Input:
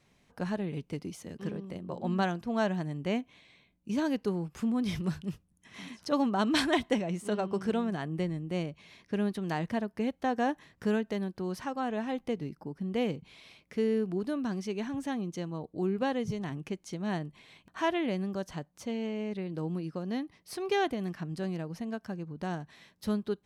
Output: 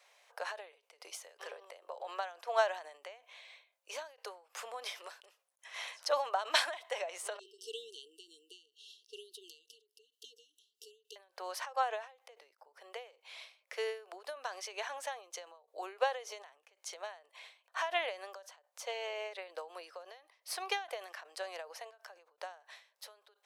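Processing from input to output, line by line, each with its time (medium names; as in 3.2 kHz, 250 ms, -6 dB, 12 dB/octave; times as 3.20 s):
7.39–11.16 s: brick-wall FIR band-stop 460–2700 Hz
whole clip: steep high-pass 520 Hz 48 dB/octave; endings held to a fixed fall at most 140 dB/s; trim +5 dB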